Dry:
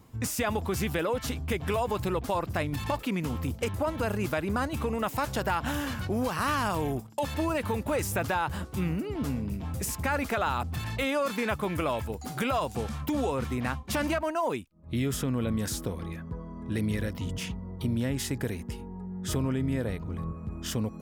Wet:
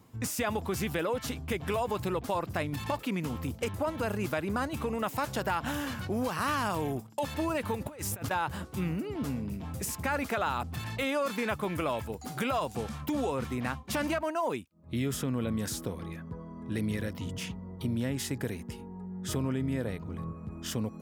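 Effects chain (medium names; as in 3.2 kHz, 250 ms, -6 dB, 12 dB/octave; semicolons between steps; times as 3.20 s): high-pass 88 Hz; 7.75–8.31 s: compressor with a negative ratio -34 dBFS, ratio -0.5; trim -2 dB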